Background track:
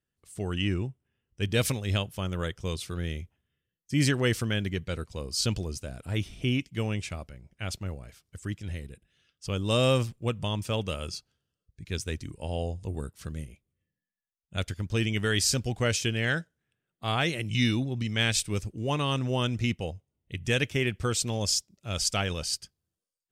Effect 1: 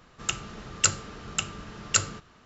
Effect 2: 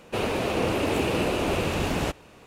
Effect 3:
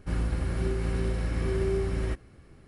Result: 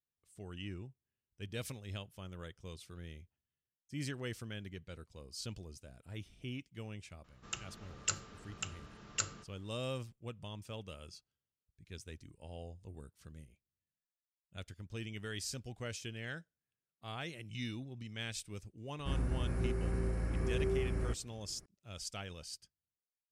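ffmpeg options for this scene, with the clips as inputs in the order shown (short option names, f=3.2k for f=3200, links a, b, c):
-filter_complex "[0:a]volume=-16dB[a];[3:a]equalizer=f=3.5k:t=o:w=0.73:g=-14[b];[1:a]atrim=end=2.45,asetpts=PTS-STARTPTS,volume=-12.5dB,afade=t=in:d=0.004:c=hsin,afade=t=out:st=2.446:d=0.004:c=hsin,adelay=7240[c];[b]atrim=end=2.67,asetpts=PTS-STARTPTS,volume=-6.5dB,afade=t=in:d=0.004:c=hsin,afade=t=out:st=2.666:d=0.004:c=hsin,adelay=18990[d];[a][c][d]amix=inputs=3:normalize=0"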